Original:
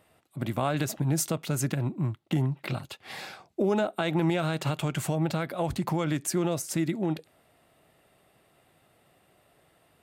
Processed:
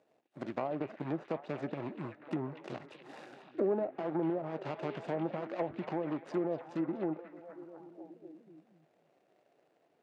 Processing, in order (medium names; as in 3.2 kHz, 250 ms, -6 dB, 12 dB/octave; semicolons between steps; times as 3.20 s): median filter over 41 samples; high-pass 370 Hz 12 dB/octave; low-pass that closes with the level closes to 690 Hz, closed at -29 dBFS; low-pass 8.7 kHz; repeats whose band climbs or falls 243 ms, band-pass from 2.8 kHz, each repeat -0.7 oct, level -4 dB